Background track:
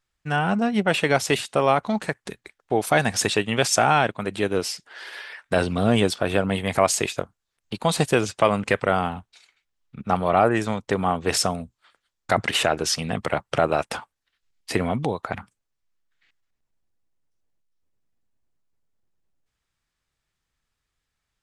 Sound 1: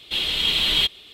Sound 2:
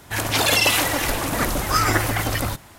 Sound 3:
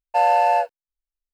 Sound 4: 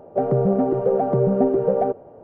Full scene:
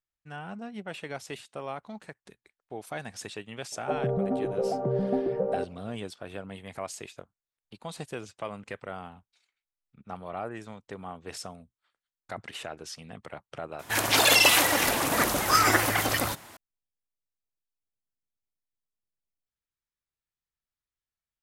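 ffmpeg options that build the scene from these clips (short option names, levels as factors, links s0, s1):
-filter_complex "[0:a]volume=0.133[s0];[2:a]highpass=f=270:p=1[s1];[4:a]atrim=end=2.23,asetpts=PTS-STARTPTS,volume=0.355,afade=t=in:d=0.004:c=hsin,afade=t=out:st=2.226:d=0.004:c=hsin,adelay=3720[s2];[s1]atrim=end=2.78,asetpts=PTS-STARTPTS,volume=0.891,afade=t=in:d=0.004:c=hsin,afade=t=out:st=2.776:d=0.004:c=hsin,adelay=13790[s3];[s0][s2][s3]amix=inputs=3:normalize=0"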